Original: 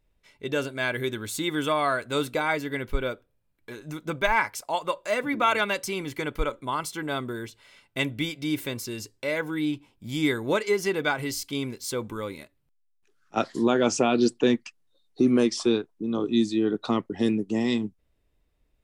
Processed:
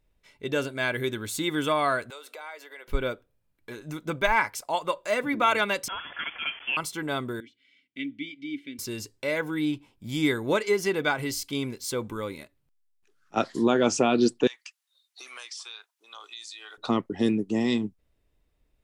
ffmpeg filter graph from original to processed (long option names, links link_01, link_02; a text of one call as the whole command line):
ffmpeg -i in.wav -filter_complex "[0:a]asettb=1/sr,asplit=3[link_01][link_02][link_03];[link_01]atrim=end=2.104[link_04];[link_02]atrim=start=2.1:end=2.88,asetpts=PTS-STARTPTS,afade=type=in:duration=0.004:curve=qsin,afade=type=out:start_time=0.776:duration=0.004:curve=qsin,acompressor=threshold=-35dB:ratio=16:attack=3.2:release=140:knee=1:detection=peak,highpass=frequency=490:width=0.5412,highpass=frequency=490:width=1.3066[link_05];[link_03]atrim=start=2.876[link_06];[link_04][link_05]acrossfade=duration=0.004:curve1=hsin:curve2=qsin[link_07];[link_07][link_06]acrossfade=duration=0.004:curve1=qsin:curve2=hsin,asettb=1/sr,asplit=3[link_08][link_09][link_10];[link_08]atrim=end=5.884[link_11];[link_09]atrim=start=5.88:end=6.77,asetpts=PTS-STARTPTS,afade=type=in:duration=0.004:curve=qsin,afade=type=out:start_time=0.886:duration=0.004:curve=qsin,aeval=exprs='val(0)+0.5*0.0211*sgn(val(0))':channel_layout=same,highpass=730,lowpass=frequency=3100:width_type=q:width=0.5098,lowpass=frequency=3100:width_type=q:width=0.6013,lowpass=frequency=3100:width_type=q:width=0.9,lowpass=frequency=3100:width_type=q:width=2.563,afreqshift=-3700[link_12];[link_10]atrim=start=6.766[link_13];[link_11][link_12]acrossfade=duration=0.004:curve1=hsin:curve2=qsin[link_14];[link_14][link_13]acrossfade=duration=0.004:curve1=qsin:curve2=hsin,asettb=1/sr,asplit=3[link_15][link_16][link_17];[link_15]atrim=end=7.404[link_18];[link_16]atrim=start=7.4:end=8.79,asetpts=PTS-STARTPTS,afade=type=in:duration=0.004:curve=qsin,afade=type=out:start_time=1.386:duration=0.004:curve=qsin,equalizer=frequency=6800:width=0.42:gain=6,acrossover=split=4700[link_19][link_20];[link_20]acompressor=threshold=-44dB:ratio=4:attack=1:release=60[link_21];[link_19][link_21]amix=inputs=2:normalize=0,asplit=3[link_22][link_23][link_24];[link_22]bandpass=frequency=270:width_type=q:width=8,volume=0dB[link_25];[link_23]bandpass=frequency=2290:width_type=q:width=8,volume=-6dB[link_26];[link_24]bandpass=frequency=3010:width_type=q:width=8,volume=-9dB[link_27];[link_25][link_26][link_27]amix=inputs=3:normalize=0[link_28];[link_17]atrim=start=8.786[link_29];[link_18][link_28]acrossfade=duration=0.004:curve1=hsin:curve2=qsin[link_30];[link_30][link_29]acrossfade=duration=0.004:curve1=qsin:curve2=hsin,asettb=1/sr,asplit=3[link_31][link_32][link_33];[link_31]atrim=end=14.474[link_34];[link_32]atrim=start=14.47:end=16.78,asetpts=PTS-STARTPTS,afade=type=in:duration=0.004:curve=qsin,afade=type=out:start_time=2.306:duration=0.004:curve=qsin,highpass=frequency=800:width=0.5412,highpass=frequency=800:width=1.3066,tiltshelf=frequency=1300:gain=-7,acompressor=threshold=-39dB:ratio=4:attack=3.2:release=140:knee=1:detection=peak[link_35];[link_33]atrim=start=16.776[link_36];[link_34][link_35]acrossfade=duration=0.004:curve1=hsin:curve2=qsin[link_37];[link_37][link_36]acrossfade=duration=0.004:curve1=qsin:curve2=hsin" out.wav